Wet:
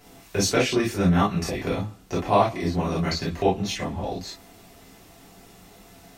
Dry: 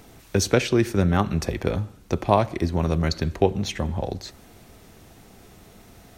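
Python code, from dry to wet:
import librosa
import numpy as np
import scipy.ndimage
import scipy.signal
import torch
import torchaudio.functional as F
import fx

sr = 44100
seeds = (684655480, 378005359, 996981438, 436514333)

y = fx.low_shelf(x, sr, hz=350.0, db=-6.0)
y = fx.rev_gated(y, sr, seeds[0], gate_ms=80, shape='flat', drr_db=-8.0)
y = F.gain(torch.from_numpy(y), -7.0).numpy()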